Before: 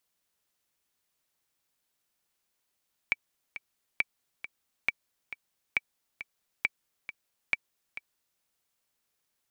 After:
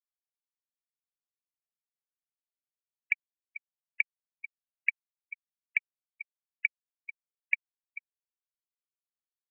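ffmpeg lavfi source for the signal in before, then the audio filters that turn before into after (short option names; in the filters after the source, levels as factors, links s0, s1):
-f lavfi -i "aevalsrc='pow(10,(-11.5-13.5*gte(mod(t,2*60/136),60/136))/20)*sin(2*PI*2310*mod(t,60/136))*exp(-6.91*mod(t,60/136)/0.03)':d=5.29:s=44100"
-filter_complex "[0:a]afftfilt=real='re*gte(hypot(re,im),0.0501)':imag='im*gte(hypot(re,im),0.0501)':win_size=1024:overlap=0.75,equalizer=f=2700:w=1.5:g=-5,acrossover=split=230|720|3100[s0][s1][s2][s3];[s2]acontrast=84[s4];[s0][s1][s4][s3]amix=inputs=4:normalize=0"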